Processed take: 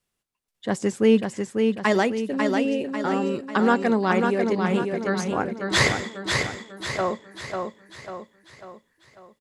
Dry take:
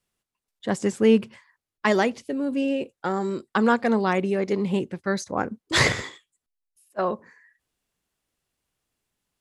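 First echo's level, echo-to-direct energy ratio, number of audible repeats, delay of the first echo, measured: -4.5 dB, -3.5 dB, 5, 545 ms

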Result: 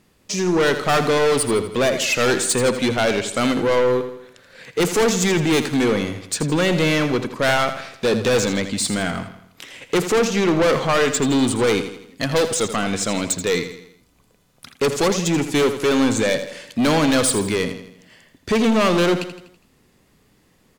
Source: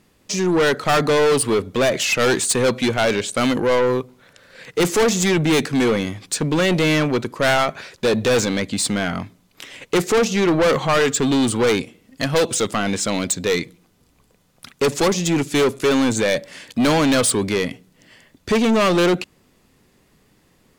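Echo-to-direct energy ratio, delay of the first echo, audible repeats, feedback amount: -9.5 dB, 82 ms, 4, 48%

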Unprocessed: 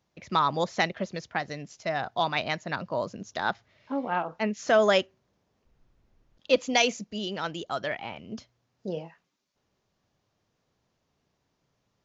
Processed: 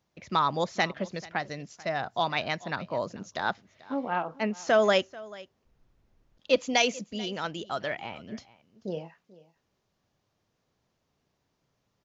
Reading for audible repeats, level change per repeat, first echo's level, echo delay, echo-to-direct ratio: 1, no regular repeats, -20.5 dB, 438 ms, -20.5 dB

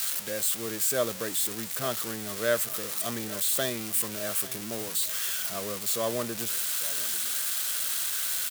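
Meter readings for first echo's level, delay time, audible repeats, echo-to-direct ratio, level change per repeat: -18.5 dB, 844 ms, 2, -18.0 dB, -11.5 dB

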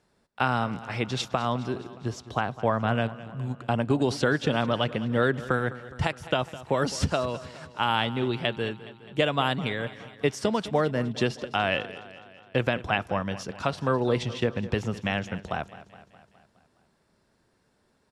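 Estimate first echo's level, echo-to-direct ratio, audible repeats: -16.5 dB, -14.5 dB, 5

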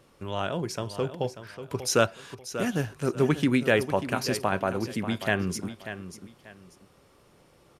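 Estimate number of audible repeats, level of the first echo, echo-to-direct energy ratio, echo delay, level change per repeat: 2, -11.5 dB, -11.0 dB, 589 ms, -11.5 dB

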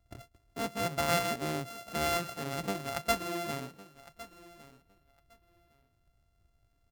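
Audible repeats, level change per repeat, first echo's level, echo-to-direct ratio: 2, -16.0 dB, -18.0 dB, -18.0 dB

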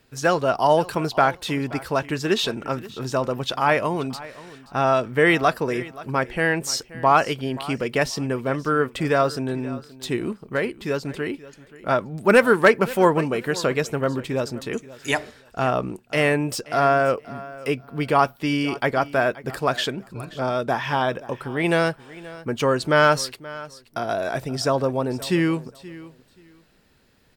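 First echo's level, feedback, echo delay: -18.5 dB, 21%, 528 ms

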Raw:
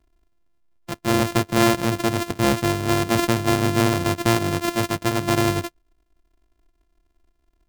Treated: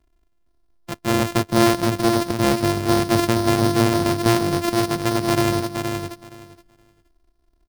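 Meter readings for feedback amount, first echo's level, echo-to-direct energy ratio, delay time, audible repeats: 16%, -6.0 dB, -6.0 dB, 470 ms, 2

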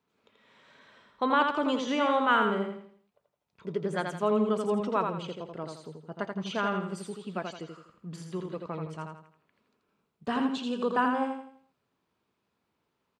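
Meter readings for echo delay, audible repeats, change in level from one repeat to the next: 83 ms, 4, -8.5 dB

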